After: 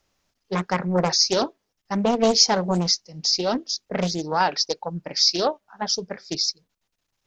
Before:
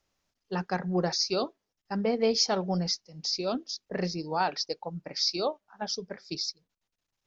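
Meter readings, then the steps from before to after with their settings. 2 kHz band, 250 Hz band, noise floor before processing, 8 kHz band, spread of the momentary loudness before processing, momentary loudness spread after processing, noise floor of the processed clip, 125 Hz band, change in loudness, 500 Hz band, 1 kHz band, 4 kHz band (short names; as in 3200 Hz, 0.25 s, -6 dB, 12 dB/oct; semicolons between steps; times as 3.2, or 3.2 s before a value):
+7.0 dB, +6.5 dB, -85 dBFS, n/a, 10 LU, 11 LU, -78 dBFS, +6.5 dB, +8.0 dB, +6.0 dB, +8.0 dB, +9.0 dB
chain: dynamic EQ 6600 Hz, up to +5 dB, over -44 dBFS, Q 1.9; Doppler distortion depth 0.64 ms; gain +7 dB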